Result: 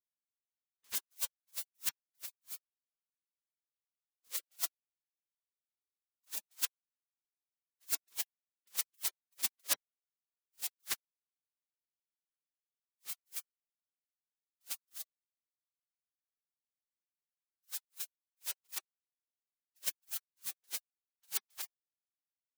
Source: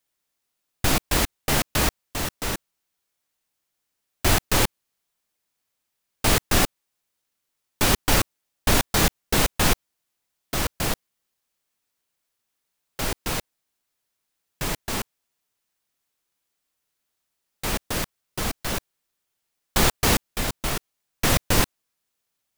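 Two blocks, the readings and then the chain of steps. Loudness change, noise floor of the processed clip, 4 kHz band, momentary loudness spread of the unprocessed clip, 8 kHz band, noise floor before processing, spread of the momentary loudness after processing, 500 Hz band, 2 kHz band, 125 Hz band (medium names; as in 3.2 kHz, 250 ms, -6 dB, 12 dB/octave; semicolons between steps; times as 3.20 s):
-15.5 dB, under -85 dBFS, -18.0 dB, 11 LU, -13.5 dB, -80 dBFS, 10 LU, -33.0 dB, -23.5 dB, under -40 dB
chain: spectral gate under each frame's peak -25 dB weak; attacks held to a fixed rise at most 520 dB/s; trim -1 dB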